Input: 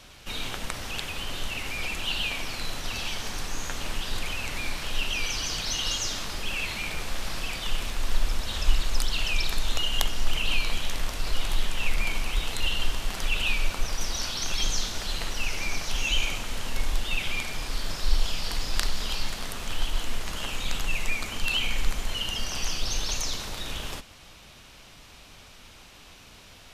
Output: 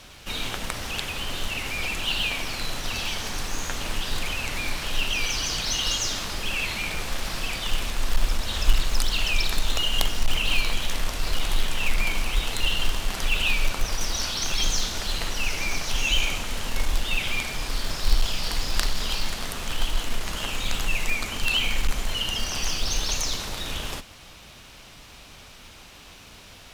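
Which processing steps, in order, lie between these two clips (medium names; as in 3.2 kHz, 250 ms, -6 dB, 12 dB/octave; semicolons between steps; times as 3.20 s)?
in parallel at -11 dB: companded quantiser 4-bit; on the sum: one-sided clip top -11 dBFS; trim +1 dB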